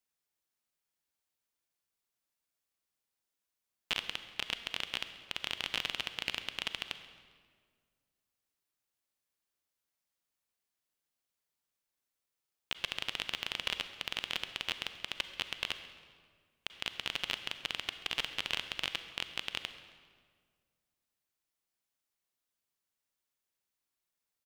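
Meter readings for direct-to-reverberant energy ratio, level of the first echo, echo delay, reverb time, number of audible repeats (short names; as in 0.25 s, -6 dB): 9.5 dB, -21.0 dB, 0.134 s, 1.8 s, 1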